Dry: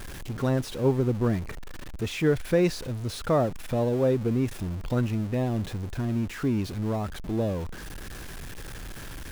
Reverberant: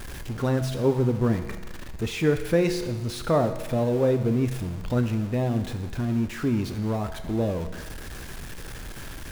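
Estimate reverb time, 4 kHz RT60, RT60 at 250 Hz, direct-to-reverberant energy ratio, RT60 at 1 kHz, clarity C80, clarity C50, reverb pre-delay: 1.3 s, 1.2 s, 1.3 s, 7.0 dB, 1.3 s, 11.0 dB, 10.0 dB, 6 ms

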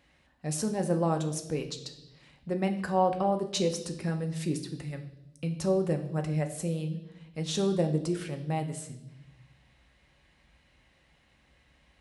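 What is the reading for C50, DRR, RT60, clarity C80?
11.0 dB, 5.0 dB, 0.85 s, 13.5 dB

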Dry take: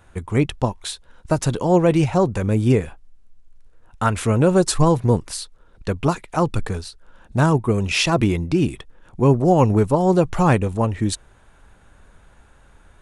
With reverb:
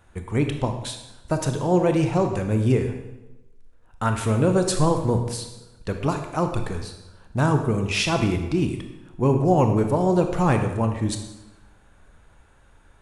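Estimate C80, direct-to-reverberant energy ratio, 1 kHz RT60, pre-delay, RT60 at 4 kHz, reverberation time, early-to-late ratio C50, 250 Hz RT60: 9.0 dB, 5.0 dB, 1.0 s, 23 ms, 0.85 s, 1.0 s, 7.0 dB, 1.1 s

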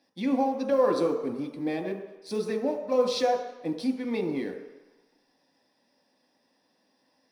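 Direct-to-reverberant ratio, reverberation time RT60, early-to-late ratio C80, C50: 2.0 dB, 1.0 s, 8.5 dB, 7.0 dB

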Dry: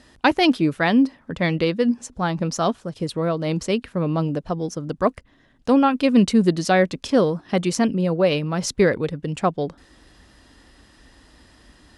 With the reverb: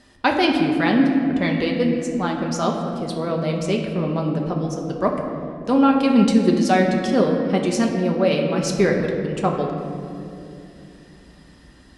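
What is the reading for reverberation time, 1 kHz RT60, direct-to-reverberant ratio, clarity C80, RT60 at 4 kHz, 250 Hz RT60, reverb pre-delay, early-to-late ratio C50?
2.8 s, 2.2 s, 0.0 dB, 5.0 dB, 1.4 s, 4.5 s, 5 ms, 4.0 dB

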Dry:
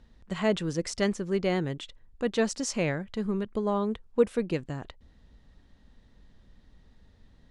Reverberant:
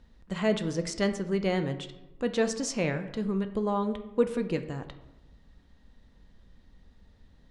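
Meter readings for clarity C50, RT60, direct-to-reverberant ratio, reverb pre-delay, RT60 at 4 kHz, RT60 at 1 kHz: 12.0 dB, 1.0 s, 8.0 dB, 3 ms, 0.55 s, 0.95 s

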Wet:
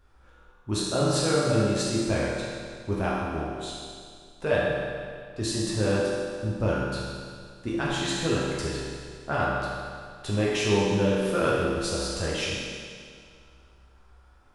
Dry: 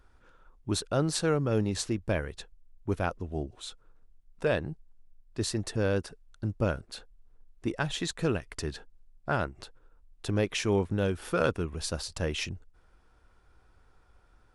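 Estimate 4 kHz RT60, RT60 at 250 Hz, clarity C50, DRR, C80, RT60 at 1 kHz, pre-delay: 2.0 s, 2.1 s, −2.5 dB, −7.0 dB, −0.5 dB, 2.1 s, 7 ms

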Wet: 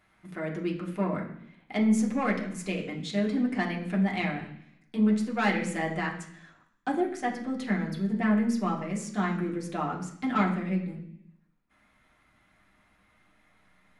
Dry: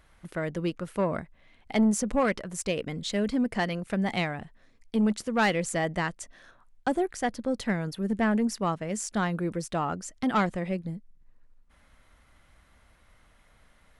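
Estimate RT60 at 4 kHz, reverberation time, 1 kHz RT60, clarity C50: 0.95 s, 0.70 s, 0.70 s, 8.0 dB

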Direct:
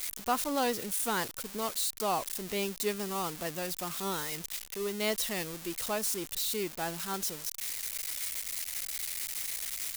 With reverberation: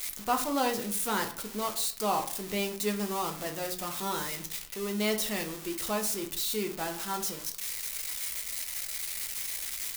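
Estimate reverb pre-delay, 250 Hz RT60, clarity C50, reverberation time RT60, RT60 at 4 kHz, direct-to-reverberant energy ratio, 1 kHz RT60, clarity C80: 4 ms, 0.55 s, 11.0 dB, 0.55 s, 0.35 s, 3.5 dB, 0.50 s, 15.5 dB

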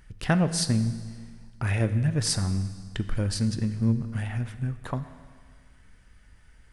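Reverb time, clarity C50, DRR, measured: 1.8 s, 12.5 dB, 11.0 dB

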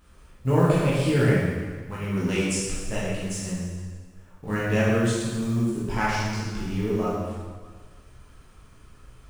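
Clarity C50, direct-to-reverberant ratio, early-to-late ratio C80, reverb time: −2.0 dB, −8.5 dB, 1.0 dB, 1.5 s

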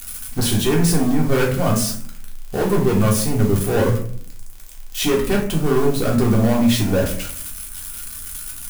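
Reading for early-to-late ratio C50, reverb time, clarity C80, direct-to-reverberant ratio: 7.0 dB, 0.55 s, 11.5 dB, −2.0 dB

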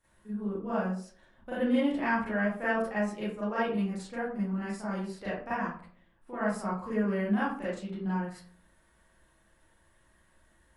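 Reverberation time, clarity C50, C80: 0.50 s, 0.5 dB, 5.5 dB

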